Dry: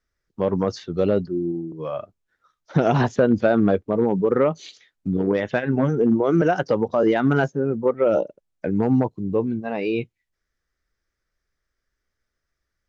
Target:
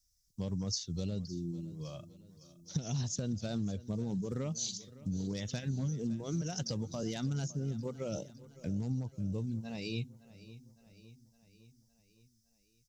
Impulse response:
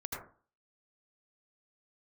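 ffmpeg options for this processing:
-af "firequalizer=gain_entry='entry(100,0);entry(350,-20);entry(890,-22);entry(1500,-22);entry(3800,1);entry(5600,13)':delay=0.05:min_phase=1,acompressor=threshold=-32dB:ratio=6,aecho=1:1:561|1122|1683|2244|2805:0.119|0.0701|0.0414|0.0244|0.0144"

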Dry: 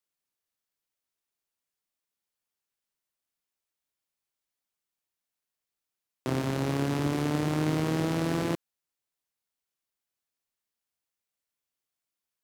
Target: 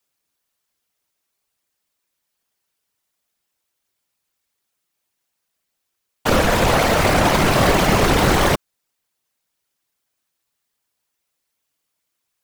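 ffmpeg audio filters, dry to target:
ffmpeg -i in.wav -af "aeval=exprs='0.188*(cos(1*acos(clip(val(0)/0.188,-1,1)))-cos(1*PI/2))+0.0841*(cos(3*acos(clip(val(0)/0.188,-1,1)))-cos(3*PI/2))+0.075*(cos(6*acos(clip(val(0)/0.188,-1,1)))-cos(6*PI/2))':channel_layout=same,aeval=exprs='0.282*sin(PI/2*6.31*val(0)/0.282)':channel_layout=same,afftfilt=real='hypot(re,im)*cos(2*PI*random(0))':imag='hypot(re,im)*sin(2*PI*random(1))':win_size=512:overlap=0.75,volume=7dB" out.wav

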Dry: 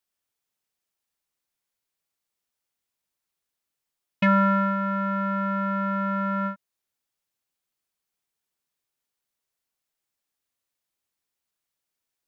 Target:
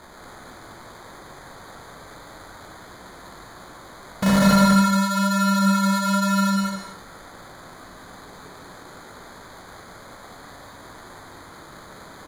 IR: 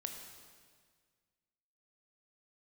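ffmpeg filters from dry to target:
-filter_complex "[0:a]aeval=exprs='val(0)+0.5*0.0422*sgn(val(0))':channel_layout=same,lowpass=frequency=2000:width=0.5412,lowpass=frequency=2000:width=1.3066,aeval=exprs='(mod(4.73*val(0)+1,2)-1)/4.73':channel_layout=same,flanger=delay=16:depth=7.7:speed=1.1,acrusher=samples=16:mix=1:aa=0.000001,aecho=1:1:198:0.668[link_01];[1:a]atrim=start_sample=2205,afade=type=out:start_time=0.19:duration=0.01,atrim=end_sample=8820,asetrate=23814,aresample=44100[link_02];[link_01][link_02]afir=irnorm=-1:irlink=0,volume=2dB"

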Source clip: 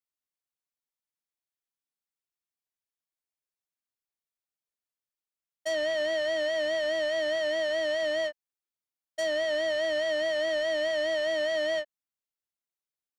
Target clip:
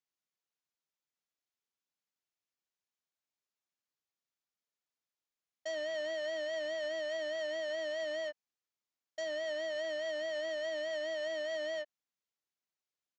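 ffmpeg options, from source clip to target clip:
ffmpeg -i in.wav -af "highpass=110,alimiter=level_in=6.5dB:limit=-24dB:level=0:latency=1:release=85,volume=-6.5dB,aresample=16000,asoftclip=type=tanh:threshold=-30.5dB,aresample=44100" out.wav

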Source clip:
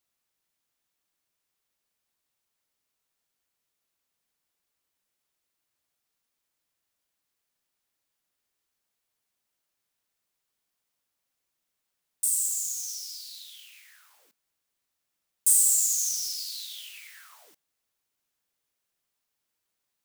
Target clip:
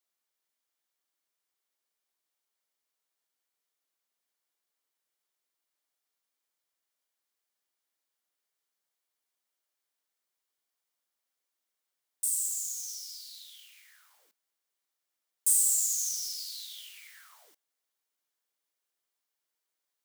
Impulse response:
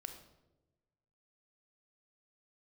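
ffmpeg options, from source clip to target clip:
-af "highpass=320,bandreject=frequency=2600:width=18,volume=-4dB"

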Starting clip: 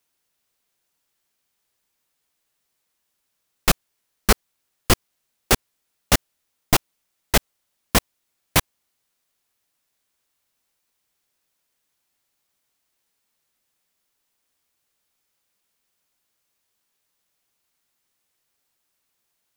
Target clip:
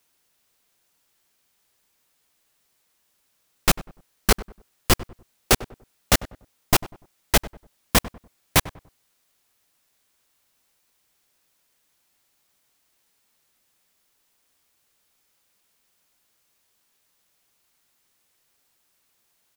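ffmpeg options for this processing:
ffmpeg -i in.wav -filter_complex "[0:a]asplit=2[link_01][link_02];[link_02]alimiter=limit=-9dB:level=0:latency=1:release=355,volume=0dB[link_03];[link_01][link_03]amix=inputs=2:normalize=0,asoftclip=type=tanh:threshold=-9.5dB,asplit=2[link_04][link_05];[link_05]adelay=97,lowpass=frequency=1200:poles=1,volume=-16dB,asplit=2[link_06][link_07];[link_07]adelay=97,lowpass=frequency=1200:poles=1,volume=0.34,asplit=2[link_08][link_09];[link_09]adelay=97,lowpass=frequency=1200:poles=1,volume=0.34[link_10];[link_04][link_06][link_08][link_10]amix=inputs=4:normalize=0" out.wav

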